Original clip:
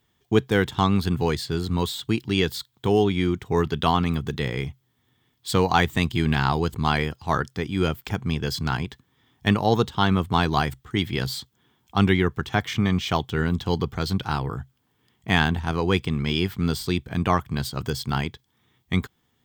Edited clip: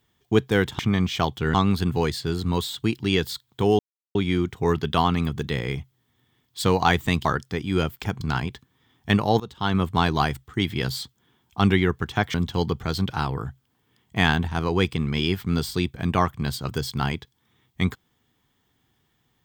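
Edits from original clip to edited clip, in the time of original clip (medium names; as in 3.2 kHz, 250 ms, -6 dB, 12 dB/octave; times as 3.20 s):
3.04 s: insert silence 0.36 s
6.14–7.30 s: delete
8.26–8.58 s: delete
9.77–10.20 s: fade in, from -20.5 dB
12.71–13.46 s: move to 0.79 s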